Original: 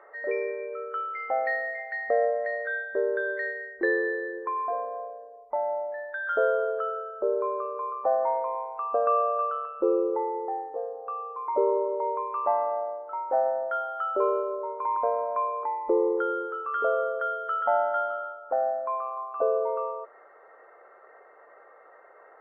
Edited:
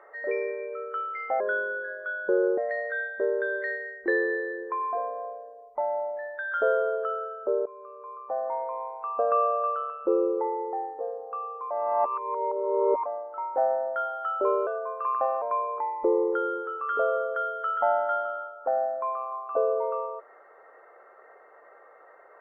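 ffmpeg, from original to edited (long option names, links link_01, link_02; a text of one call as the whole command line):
ffmpeg -i in.wav -filter_complex "[0:a]asplit=8[link_01][link_02][link_03][link_04][link_05][link_06][link_07][link_08];[link_01]atrim=end=1.404[link_09];[link_02]atrim=start=1.4:end=2.33,asetpts=PTS-STARTPTS,asetrate=34839,aresample=44100,atrim=end_sample=51915,asetpts=PTS-STARTPTS[link_10];[link_03]atrim=start=2.326:end=7.41,asetpts=PTS-STARTPTS,afade=type=out:start_time=5.08:duration=0.004:curve=hsin:silence=0.112202[link_11];[link_04]atrim=start=7.41:end=11.462,asetpts=PTS-STARTPTS,afade=type=in:duration=1.62:silence=0.112202[link_12];[link_05]atrim=start=11.458:end=12.812,asetpts=PTS-STARTPTS,areverse[link_13];[link_06]atrim=start=12.808:end=14.424[link_14];[link_07]atrim=start=14.42:end=15.27,asetpts=PTS-STARTPTS,asetrate=49833,aresample=44100[link_15];[link_08]atrim=start=15.266[link_16];[link_09][link_10]acrossfade=duration=0.004:curve1=hsin:curve2=hsin[link_17];[link_11][link_12]concat=n=2:v=0:a=1[link_18];[link_17][link_18]acrossfade=duration=0.004:curve1=hsin:curve2=hsin[link_19];[link_19][link_13]acrossfade=duration=0.004:curve1=hsin:curve2=hsin[link_20];[link_20][link_14]acrossfade=duration=0.004:curve1=hsin:curve2=hsin[link_21];[link_21][link_15]acrossfade=duration=0.004:curve1=hsin:curve2=hsin[link_22];[link_22][link_16]acrossfade=duration=0.004:curve1=hsin:curve2=hsin" out.wav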